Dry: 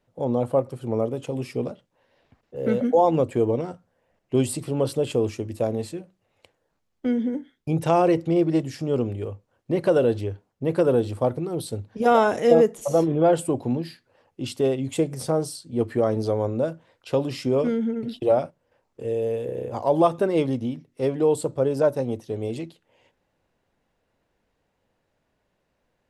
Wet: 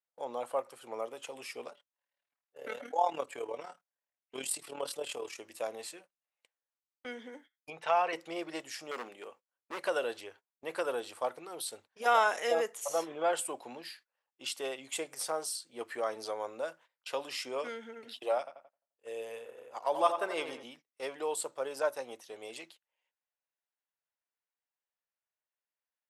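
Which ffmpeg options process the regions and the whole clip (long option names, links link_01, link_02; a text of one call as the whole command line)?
ffmpeg -i in.wav -filter_complex "[0:a]asettb=1/sr,asplit=3[link_01][link_02][link_03];[link_01]atrim=end=1.704[link_04];[link_02]atrim=start=1.7:end=5.38,asetpts=PTS-STARTPTS,afade=type=in:duration=0.004:curve=qsin,afade=type=out:start_time=3.676:duration=0.004:curve=qsin,aecho=1:1:7:0.46,atrim=end_sample=162288,tremolo=f=38:d=0.667[link_05];[link_03]atrim=start=5.376[link_06];[link_04][link_05]acrossfade=duration=0.004:curve1=hsin:curve2=qsin[link_07];[link_07][link_06]acrossfade=duration=0.004:curve1=qsin:curve2=hsin,asettb=1/sr,asplit=3[link_08][link_09][link_10];[link_08]atrim=end=7.704[link_11];[link_09]atrim=start=7.7:end=8.13,asetpts=PTS-STARTPTS,afade=type=in:duration=0.004:curve=qsin,afade=type=out:start_time=0.426:duration=0.004:curve=qsin,lowpass=3200,equalizer=frequency=280:width_type=o:width=1.2:gain=-7.5,aecho=1:1:4.5:0.4,atrim=end_sample=18963[link_12];[link_10]atrim=start=8.126[link_13];[link_11][link_12]acrossfade=duration=0.004:curve1=hsin:curve2=qsin[link_14];[link_14][link_13]acrossfade=duration=0.004:curve1=qsin:curve2=hsin,asettb=1/sr,asplit=3[link_15][link_16][link_17];[link_15]atrim=end=8.914[link_18];[link_16]atrim=start=8.91:end=9.81,asetpts=PTS-STARTPTS,afade=type=in:duration=0.004:curve=qsin,afade=type=out:start_time=0.896:duration=0.004:curve=qsin,lowshelf=frequency=140:width_type=q:width=1.5:gain=-10,volume=22.5dB,asoftclip=hard,volume=-22.5dB[link_19];[link_17]atrim=start=9.806[link_20];[link_18][link_19]acrossfade=duration=0.004:curve1=hsin:curve2=qsin[link_21];[link_21][link_20]acrossfade=duration=0.004:curve1=qsin:curve2=hsin,asettb=1/sr,asplit=3[link_22][link_23][link_24];[link_22]atrim=end=18.384[link_25];[link_23]atrim=start=18.38:end=20.63,asetpts=PTS-STARTPTS,afade=type=in:duration=0.004:curve=qsin,afade=type=out:start_time=2.246:duration=0.004:curve=qsin,agate=range=-8dB:threshold=-29dB:ratio=16:release=100:detection=peak,asplit=2[link_26][link_27];[link_27]adelay=87,lowpass=frequency=2700:poles=1,volume=-8dB,asplit=2[link_28][link_29];[link_29]adelay=87,lowpass=frequency=2700:poles=1,volume=0.5,asplit=2[link_30][link_31];[link_31]adelay=87,lowpass=frequency=2700:poles=1,volume=0.5,asplit=2[link_32][link_33];[link_33]adelay=87,lowpass=frequency=2700:poles=1,volume=0.5,asplit=2[link_34][link_35];[link_35]adelay=87,lowpass=frequency=2700:poles=1,volume=0.5,asplit=2[link_36][link_37];[link_37]adelay=87,lowpass=frequency=2700:poles=1,volume=0.5[link_38];[link_26][link_28][link_30][link_32][link_34][link_36][link_38]amix=inputs=7:normalize=0,atrim=end_sample=99225[link_39];[link_24]atrim=start=20.626[link_40];[link_25][link_39]acrossfade=duration=0.004:curve1=hsin:curve2=qsin[link_41];[link_41][link_40]acrossfade=duration=0.004:curve1=qsin:curve2=hsin,highpass=1100,equalizer=frequency=4100:width=1.5:gain=-2,agate=range=-20dB:threshold=-56dB:ratio=16:detection=peak" out.wav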